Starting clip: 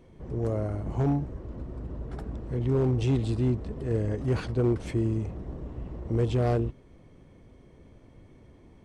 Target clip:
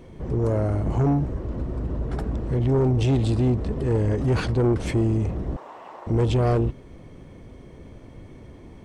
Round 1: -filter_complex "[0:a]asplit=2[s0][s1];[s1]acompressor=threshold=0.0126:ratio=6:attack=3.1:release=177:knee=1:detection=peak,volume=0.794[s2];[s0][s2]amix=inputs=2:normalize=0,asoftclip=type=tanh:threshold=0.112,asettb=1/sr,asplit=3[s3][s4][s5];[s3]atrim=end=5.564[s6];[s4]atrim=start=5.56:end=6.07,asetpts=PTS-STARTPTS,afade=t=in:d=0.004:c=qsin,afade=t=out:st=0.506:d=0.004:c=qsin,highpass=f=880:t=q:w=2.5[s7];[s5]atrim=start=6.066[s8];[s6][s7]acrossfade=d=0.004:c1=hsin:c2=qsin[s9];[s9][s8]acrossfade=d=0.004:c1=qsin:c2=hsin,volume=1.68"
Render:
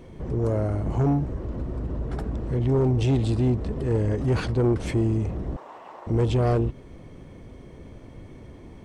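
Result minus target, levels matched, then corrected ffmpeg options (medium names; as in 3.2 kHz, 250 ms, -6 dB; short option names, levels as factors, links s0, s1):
compression: peak gain reduction +9.5 dB
-filter_complex "[0:a]asplit=2[s0][s1];[s1]acompressor=threshold=0.0473:ratio=6:attack=3.1:release=177:knee=1:detection=peak,volume=0.794[s2];[s0][s2]amix=inputs=2:normalize=0,asoftclip=type=tanh:threshold=0.112,asettb=1/sr,asplit=3[s3][s4][s5];[s3]atrim=end=5.564[s6];[s4]atrim=start=5.56:end=6.07,asetpts=PTS-STARTPTS,afade=t=in:d=0.004:c=qsin,afade=t=out:st=0.506:d=0.004:c=qsin,highpass=f=880:t=q:w=2.5[s7];[s5]atrim=start=6.066[s8];[s6][s7]acrossfade=d=0.004:c1=hsin:c2=qsin[s9];[s9][s8]acrossfade=d=0.004:c1=qsin:c2=hsin,volume=1.68"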